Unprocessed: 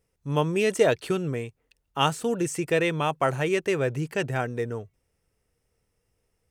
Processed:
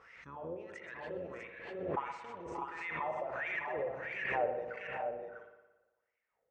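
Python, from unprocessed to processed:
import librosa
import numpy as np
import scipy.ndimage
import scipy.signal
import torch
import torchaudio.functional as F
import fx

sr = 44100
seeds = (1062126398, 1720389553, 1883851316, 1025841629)

p1 = fx.octave_divider(x, sr, octaves=1, level_db=-3.0)
p2 = scipy.signal.sosfilt(scipy.signal.butter(4, 6700.0, 'lowpass', fs=sr, output='sos'), p1)
p3 = fx.low_shelf(p2, sr, hz=68.0, db=5.5)
p4 = fx.over_compress(p3, sr, threshold_db=-26.0, ratio=-0.5)
p5 = fx.wah_lfo(p4, sr, hz=1.5, low_hz=520.0, high_hz=2200.0, q=8.3)
p6 = p5 + fx.echo_multitap(p5, sr, ms=(127, 581, 610, 647), db=(-12.5, -18.0, -11.5, -5.0), dry=0)
p7 = fx.rev_spring(p6, sr, rt60_s=1.1, pass_ms=(56,), chirp_ms=60, drr_db=5.5)
p8 = fx.pre_swell(p7, sr, db_per_s=43.0)
y = F.gain(torch.from_numpy(p8), 1.0).numpy()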